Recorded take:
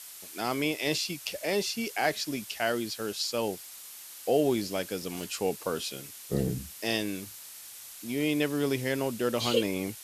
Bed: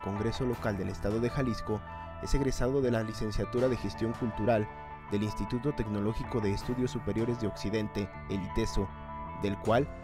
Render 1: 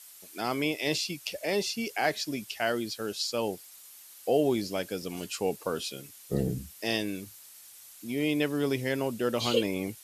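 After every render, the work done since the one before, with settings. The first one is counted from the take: noise reduction 7 dB, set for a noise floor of -46 dBFS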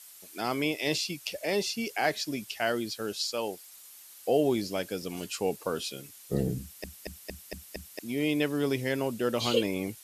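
3.21–3.68 s: bass shelf 230 Hz -11.5 dB; 6.61 s: stutter in place 0.23 s, 6 plays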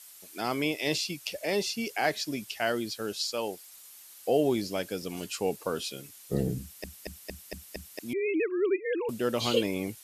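8.13–9.09 s: formants replaced by sine waves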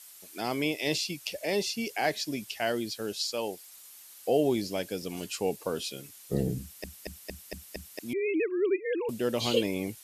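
dynamic bell 1.3 kHz, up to -6 dB, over -52 dBFS, Q 2.8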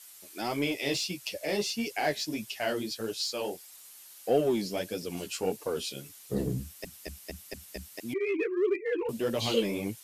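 flange 1.6 Hz, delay 6.5 ms, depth 9.6 ms, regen +1%; in parallel at -7.5 dB: hard clipper -32.5 dBFS, distortion -6 dB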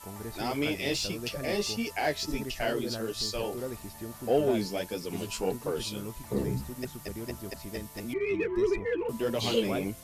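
add bed -8.5 dB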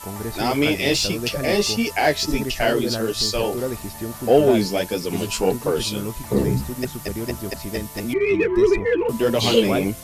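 trim +10.5 dB

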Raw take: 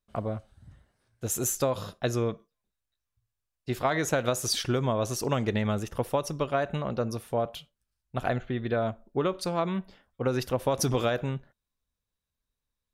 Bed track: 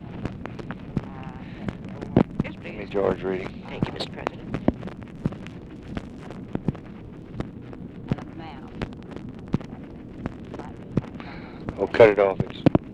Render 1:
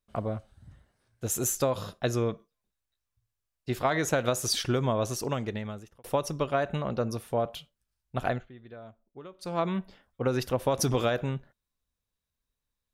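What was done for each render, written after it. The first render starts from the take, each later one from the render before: 5.00–6.04 s: fade out; 8.28–9.60 s: dip -18 dB, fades 0.22 s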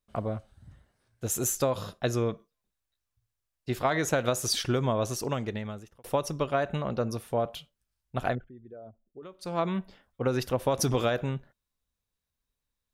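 8.35–9.23 s: resonances exaggerated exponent 2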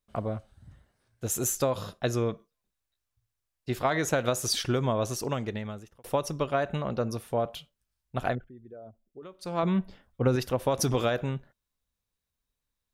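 9.63–10.36 s: bass shelf 260 Hz +8 dB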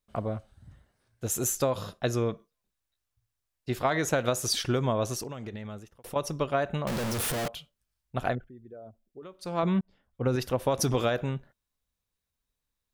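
5.22–6.16 s: compression 12:1, threshold -33 dBFS; 6.87–7.48 s: one-bit comparator; 9.81–10.45 s: fade in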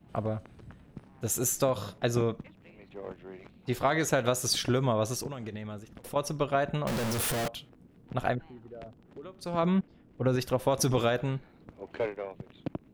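add bed track -18.5 dB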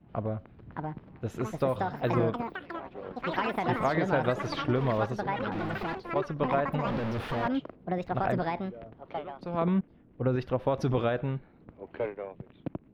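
ever faster or slower copies 660 ms, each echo +6 st, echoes 3; distance through air 350 m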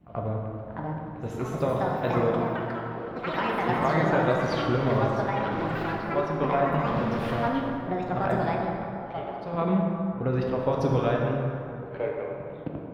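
reverse echo 83 ms -16.5 dB; plate-style reverb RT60 2.8 s, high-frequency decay 0.5×, DRR -1 dB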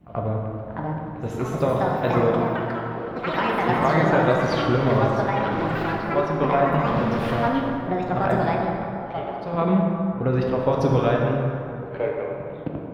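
trim +4.5 dB

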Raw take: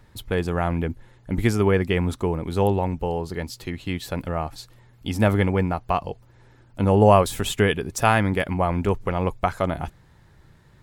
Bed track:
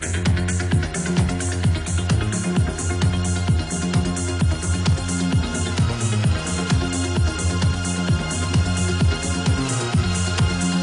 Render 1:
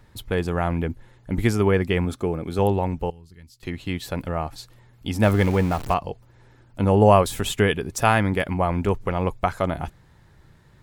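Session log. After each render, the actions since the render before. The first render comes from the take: 2.05–2.59 s: comb of notches 960 Hz; 3.10–3.63 s: amplifier tone stack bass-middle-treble 6-0-2; 5.23–5.94 s: jump at every zero crossing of -28.5 dBFS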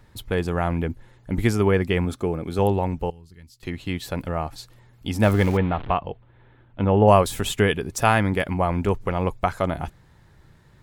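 5.57–7.08 s: elliptic low-pass 3.5 kHz, stop band 60 dB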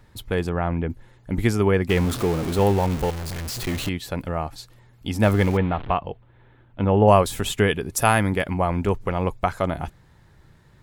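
0.49–0.90 s: distance through air 240 m; 1.89–3.89 s: jump at every zero crossing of -25 dBFS; 7.92–8.33 s: peaking EQ 11 kHz +13 dB 0.59 oct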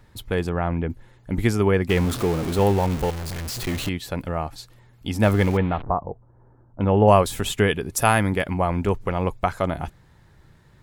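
5.83–6.81 s: inverse Chebyshev low-pass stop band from 3.9 kHz, stop band 60 dB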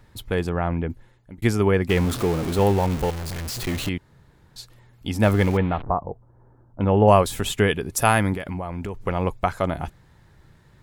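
0.65–1.42 s: fade out equal-power; 3.98–4.56 s: room tone; 8.34–9.01 s: compression 12:1, threshold -25 dBFS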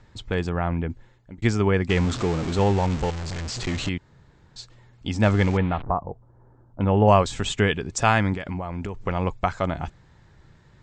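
steep low-pass 7.9 kHz 72 dB/octave; dynamic bell 450 Hz, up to -3 dB, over -32 dBFS, Q 0.98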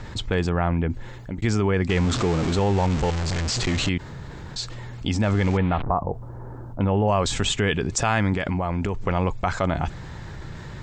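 peak limiter -12 dBFS, peak gain reduction 7 dB; level flattener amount 50%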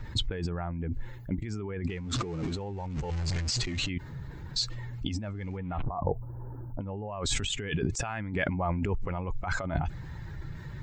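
expander on every frequency bin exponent 1.5; compressor with a negative ratio -32 dBFS, ratio -1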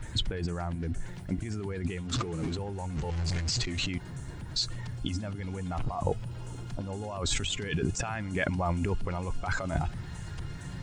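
add bed track -25.5 dB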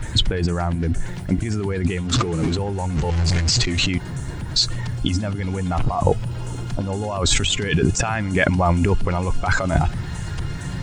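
trim +11.5 dB

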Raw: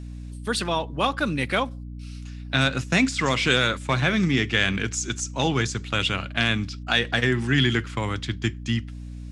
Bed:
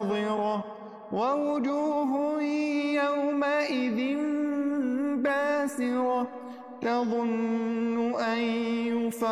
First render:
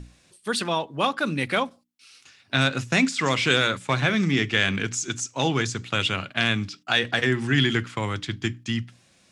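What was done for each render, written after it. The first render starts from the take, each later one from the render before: hum notches 60/120/180/240/300 Hz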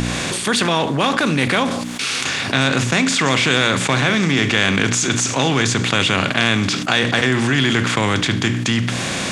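spectral levelling over time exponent 0.6; level flattener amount 70%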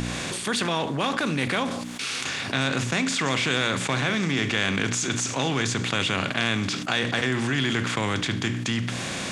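trim -8 dB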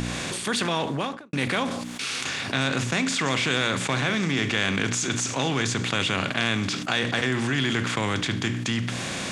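0.91–1.33 s: studio fade out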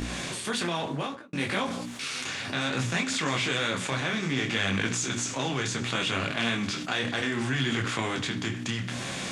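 detune thickener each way 22 cents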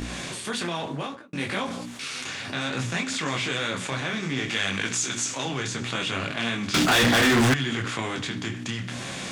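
4.48–5.45 s: tilt EQ +1.5 dB/octave; 6.74–7.54 s: waveshaping leveller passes 5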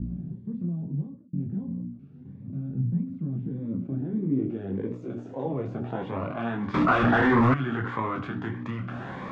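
low-pass sweep 180 Hz -> 1.2 kHz, 3.18–6.82 s; Shepard-style phaser rising 1.6 Hz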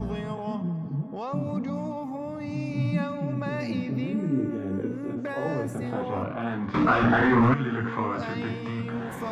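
add bed -7 dB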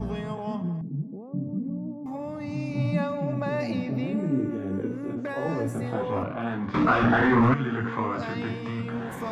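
0.81–2.06 s: Butterworth band-pass 220 Hz, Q 0.88; 2.75–4.37 s: peaking EQ 690 Hz +9 dB 0.51 oct; 5.47–6.23 s: doubling 18 ms -5 dB

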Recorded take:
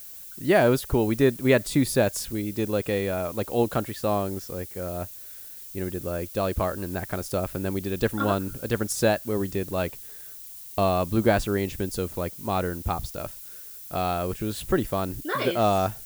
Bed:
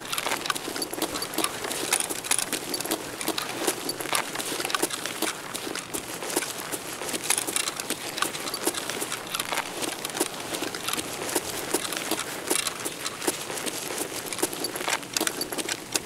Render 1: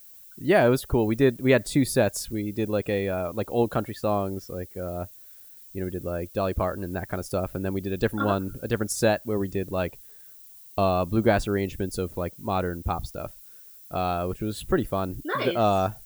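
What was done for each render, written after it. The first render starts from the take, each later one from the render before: noise reduction 9 dB, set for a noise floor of -42 dBFS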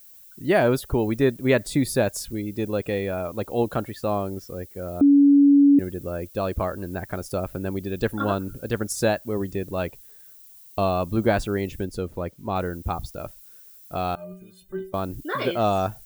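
5.01–5.79 s: bleep 283 Hz -11 dBFS; 11.85–12.56 s: treble shelf 5 kHz -9.5 dB; 14.15–14.94 s: inharmonic resonator 180 Hz, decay 0.47 s, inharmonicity 0.03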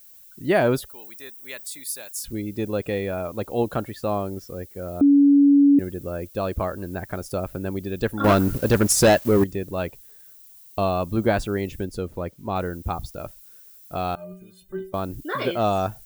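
0.89–2.24 s: differentiator; 8.24–9.44 s: waveshaping leveller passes 3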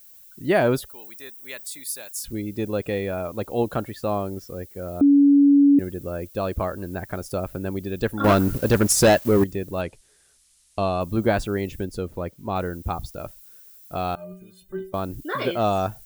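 9.81–11.01 s: elliptic low-pass 10 kHz, stop band 60 dB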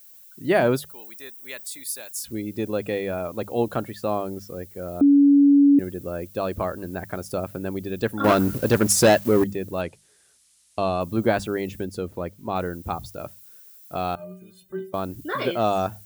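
high-pass 90 Hz; hum notches 50/100/150/200 Hz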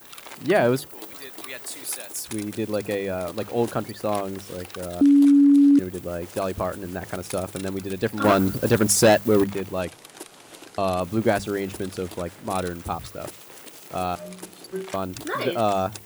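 add bed -13.5 dB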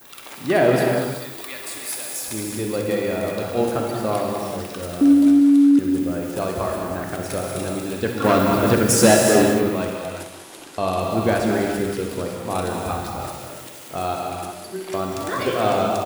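on a send: loudspeakers at several distances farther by 22 m -11 dB, 66 m -10 dB; on the sum: gated-style reverb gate 420 ms flat, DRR 0 dB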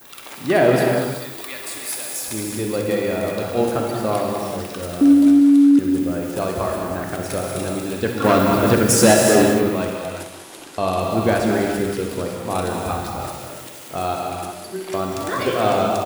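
trim +1.5 dB; peak limiter -2 dBFS, peak gain reduction 2.5 dB

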